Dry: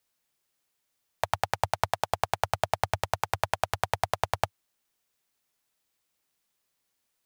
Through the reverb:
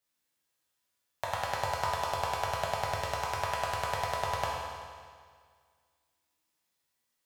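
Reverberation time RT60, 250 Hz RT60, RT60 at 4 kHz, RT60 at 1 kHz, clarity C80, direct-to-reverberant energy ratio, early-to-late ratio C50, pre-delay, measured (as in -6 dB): 1.9 s, 1.9 s, 1.8 s, 1.9 s, 0.5 dB, -6.5 dB, -1.0 dB, 4 ms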